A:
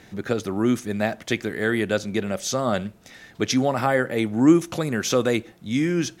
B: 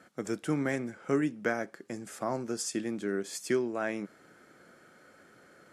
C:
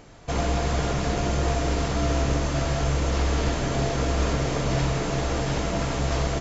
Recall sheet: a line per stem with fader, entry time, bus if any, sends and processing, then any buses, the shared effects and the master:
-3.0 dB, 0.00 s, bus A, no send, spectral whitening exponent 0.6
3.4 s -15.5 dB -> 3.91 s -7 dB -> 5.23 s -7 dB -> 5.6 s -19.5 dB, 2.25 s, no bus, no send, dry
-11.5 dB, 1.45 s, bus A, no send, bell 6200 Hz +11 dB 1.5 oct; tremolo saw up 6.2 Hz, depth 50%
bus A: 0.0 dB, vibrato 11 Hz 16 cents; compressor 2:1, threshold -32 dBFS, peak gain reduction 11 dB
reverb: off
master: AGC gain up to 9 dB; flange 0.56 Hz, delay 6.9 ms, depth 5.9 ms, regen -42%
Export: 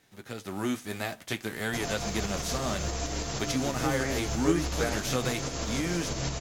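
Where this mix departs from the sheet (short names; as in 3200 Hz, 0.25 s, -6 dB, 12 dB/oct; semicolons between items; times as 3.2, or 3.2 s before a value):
stem A -3.0 dB -> -12.5 dB; stem B: entry 2.25 s -> 3.35 s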